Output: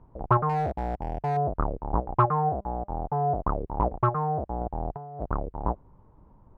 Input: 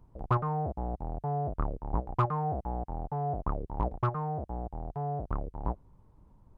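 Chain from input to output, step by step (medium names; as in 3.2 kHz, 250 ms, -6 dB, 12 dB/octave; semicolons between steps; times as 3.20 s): low-pass 1.5 kHz 12 dB/octave; bass shelf 290 Hz -6.5 dB; 0.49–1.37 s: hard clipper -29.5 dBFS, distortion -23 dB; 2.49–2.90 s: feedback comb 200 Hz, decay 0.22 s, harmonics all, mix 30%; 4.61–5.29 s: compressor with a negative ratio -41 dBFS, ratio -0.5; loudspeaker Doppler distortion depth 0.14 ms; trim +9 dB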